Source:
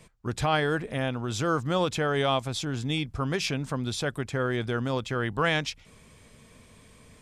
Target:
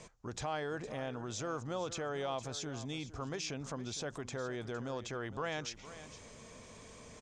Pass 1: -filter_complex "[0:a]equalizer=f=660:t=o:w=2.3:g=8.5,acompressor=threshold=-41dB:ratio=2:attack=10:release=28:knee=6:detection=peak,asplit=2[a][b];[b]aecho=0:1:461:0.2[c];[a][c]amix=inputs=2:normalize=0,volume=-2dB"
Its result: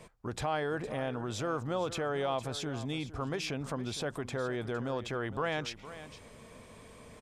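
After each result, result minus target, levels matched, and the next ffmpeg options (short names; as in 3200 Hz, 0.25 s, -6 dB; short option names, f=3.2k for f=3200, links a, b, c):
8000 Hz band -6.5 dB; compressor: peak gain reduction -5.5 dB
-filter_complex "[0:a]lowpass=f=6.5k:t=q:w=3.8,equalizer=f=660:t=o:w=2.3:g=8.5,acompressor=threshold=-41dB:ratio=2:attack=10:release=28:knee=6:detection=peak,asplit=2[a][b];[b]aecho=0:1:461:0.2[c];[a][c]amix=inputs=2:normalize=0,volume=-2dB"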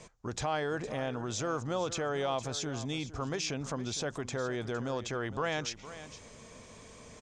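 compressor: peak gain reduction -5.5 dB
-filter_complex "[0:a]lowpass=f=6.5k:t=q:w=3.8,equalizer=f=660:t=o:w=2.3:g=8.5,acompressor=threshold=-51.5dB:ratio=2:attack=10:release=28:knee=6:detection=peak,asplit=2[a][b];[b]aecho=0:1:461:0.2[c];[a][c]amix=inputs=2:normalize=0,volume=-2dB"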